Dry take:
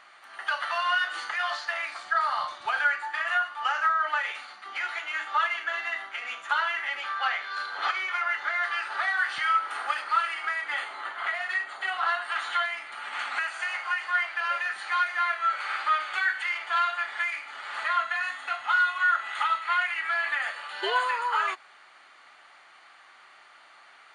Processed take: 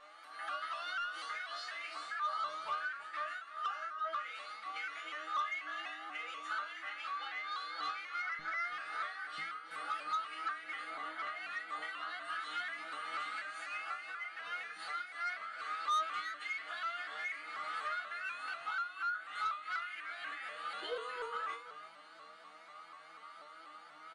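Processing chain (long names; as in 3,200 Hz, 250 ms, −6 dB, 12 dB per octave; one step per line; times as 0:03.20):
parametric band 160 Hz −6.5 dB 1.7 octaves, from 0:08.39 +5.5 dB
comb filter 6.2 ms, depth 99%
dynamic equaliser 820 Hz, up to −6 dB, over −38 dBFS, Q 1.4
downward compressor 6 to 1, threshold −31 dBFS, peak gain reduction 14.5 dB
resonators tuned to a chord D#3 sus4, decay 0.41 s
hollow resonant body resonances 280/530/1,200 Hz, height 12 dB, ringing for 40 ms
soft clipping −38.5 dBFS, distortion −11 dB
single-tap delay 334 ms −13 dB
pitch modulation by a square or saw wave saw up 4.1 Hz, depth 100 cents
level +9 dB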